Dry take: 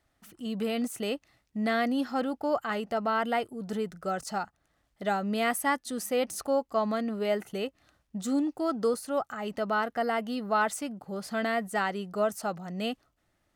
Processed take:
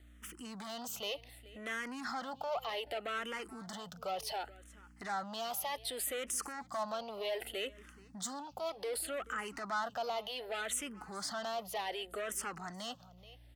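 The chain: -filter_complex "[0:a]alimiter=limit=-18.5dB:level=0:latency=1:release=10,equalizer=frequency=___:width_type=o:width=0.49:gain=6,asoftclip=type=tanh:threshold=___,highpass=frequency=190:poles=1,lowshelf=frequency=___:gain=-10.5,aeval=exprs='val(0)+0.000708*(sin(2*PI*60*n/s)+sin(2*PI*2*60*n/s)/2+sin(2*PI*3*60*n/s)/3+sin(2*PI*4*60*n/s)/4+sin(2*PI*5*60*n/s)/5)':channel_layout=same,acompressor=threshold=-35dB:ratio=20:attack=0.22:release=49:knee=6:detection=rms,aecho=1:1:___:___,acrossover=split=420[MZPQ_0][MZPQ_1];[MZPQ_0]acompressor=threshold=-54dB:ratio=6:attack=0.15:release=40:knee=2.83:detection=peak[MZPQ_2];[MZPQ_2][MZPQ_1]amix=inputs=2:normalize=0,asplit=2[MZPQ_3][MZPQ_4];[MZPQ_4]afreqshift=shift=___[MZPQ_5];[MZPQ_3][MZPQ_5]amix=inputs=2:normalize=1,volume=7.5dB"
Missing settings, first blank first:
3.2k, -28dB, 280, 429, 0.0944, -0.66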